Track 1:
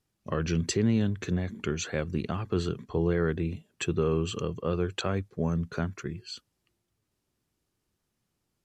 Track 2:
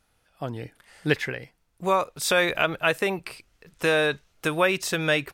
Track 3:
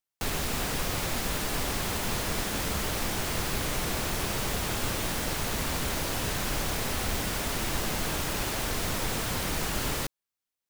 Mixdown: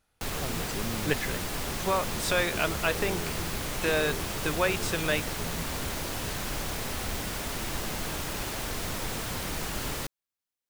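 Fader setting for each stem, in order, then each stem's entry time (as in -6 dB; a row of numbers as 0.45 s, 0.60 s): -12.0 dB, -5.5 dB, -3.0 dB; 0.00 s, 0.00 s, 0.00 s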